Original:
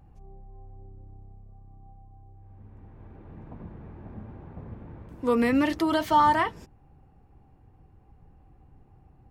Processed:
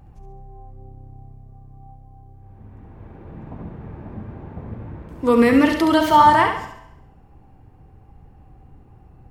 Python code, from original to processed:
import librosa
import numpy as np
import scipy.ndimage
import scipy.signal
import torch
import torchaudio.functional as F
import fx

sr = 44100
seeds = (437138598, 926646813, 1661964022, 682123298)

y = fx.echo_feedback(x, sr, ms=69, feedback_pct=42, wet_db=-7.0)
y = fx.rev_schroeder(y, sr, rt60_s=0.9, comb_ms=26, drr_db=11.5)
y = F.gain(torch.from_numpy(y), 7.0).numpy()